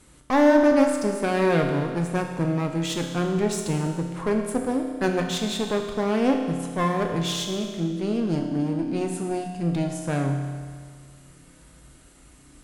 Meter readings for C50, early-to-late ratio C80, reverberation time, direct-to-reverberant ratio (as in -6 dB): 5.0 dB, 6.0 dB, 1.8 s, 2.5 dB